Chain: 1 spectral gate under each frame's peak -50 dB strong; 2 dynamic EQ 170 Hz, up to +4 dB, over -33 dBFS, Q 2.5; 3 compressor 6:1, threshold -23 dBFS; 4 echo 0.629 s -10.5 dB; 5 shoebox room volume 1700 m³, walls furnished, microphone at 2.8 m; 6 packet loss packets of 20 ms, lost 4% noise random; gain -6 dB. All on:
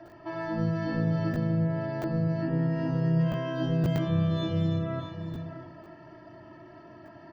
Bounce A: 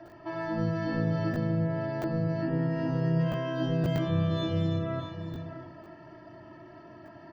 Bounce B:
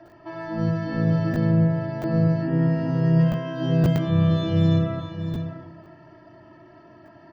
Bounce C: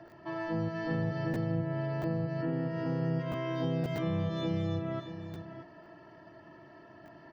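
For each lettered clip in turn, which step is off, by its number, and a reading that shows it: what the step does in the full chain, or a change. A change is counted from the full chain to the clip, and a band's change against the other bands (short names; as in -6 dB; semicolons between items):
2, momentary loudness spread change +9 LU; 3, mean gain reduction 3.0 dB; 5, momentary loudness spread change +8 LU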